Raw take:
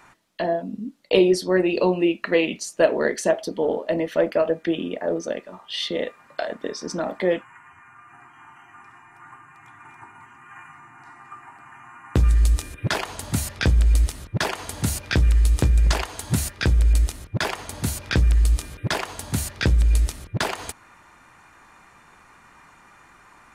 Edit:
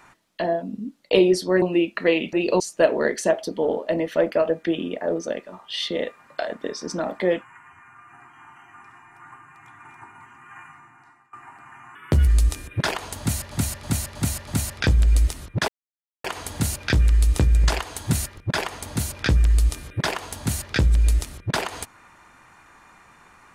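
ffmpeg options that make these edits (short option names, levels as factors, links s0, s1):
-filter_complex "[0:a]asplit=13[s0][s1][s2][s3][s4][s5][s6][s7][s8][s9][s10][s11][s12];[s0]atrim=end=1.622[s13];[s1]atrim=start=1.888:end=2.602[s14];[s2]atrim=start=1.618:end=1.892[s15];[s3]atrim=start=2.598:end=11.33,asetpts=PTS-STARTPTS,afade=t=out:st=8.042:d=0.69:silence=0.0749894[s16];[s4]atrim=start=11.33:end=11.954,asetpts=PTS-STARTPTS,afade=t=in:d=0.004:c=hsin:silence=0.0749894[s17];[s5]atrim=start=11.95:end=12.34,asetpts=PTS-STARTPTS,asetrate=53361,aresample=44100,atrim=end_sample=14214,asetpts=PTS-STARTPTS[s18];[s6]atrim=start=12.336:end=13.582[s19];[s7]atrim=start=13.258:end=13.582[s20];[s8]atrim=start=13.258:end=13.582[s21];[s9]atrim=start=13.258:end=13.582[s22];[s10]atrim=start=13.258:end=14.47,asetpts=PTS-STARTPTS,afade=t=out:st=1.208:d=0.004:c=hsin,apad=pad_dur=0.56[s23];[s11]atrim=start=14.47:end=16.602,asetpts=PTS-STARTPTS,afade=t=in:d=0.004:c=hsin[s24];[s12]atrim=start=17.238[s25];[s13][s14]acrossfade=d=0.004:c1=hsin:c2=hsin[s26];[s26][s15]acrossfade=d=0.004:c1=hsin:c2=hsin[s27];[s16][s17]concat=n=2:v=0:a=1[s28];[s27][s28]acrossfade=d=0.004:c1=hsin:c2=hsin[s29];[s29][s18]acrossfade=d=0.004:c1=hsin:c2=hsin[s30];[s30][s19]acrossfade=d=0.004:c1=hsin:c2=hsin[s31];[s31][s20]acrossfade=d=0.004:c1=hsin:c2=hsin[s32];[s32][s21]acrossfade=d=0.004:c1=hsin:c2=hsin[s33];[s33][s22]acrossfade=d=0.004:c1=hsin:c2=hsin[s34];[s23][s24]concat=n=2:v=0:a=1[s35];[s34][s35]acrossfade=d=0.004:c1=hsin:c2=hsin[s36];[s36][s25]acrossfade=d=0.004:c1=hsin:c2=hsin"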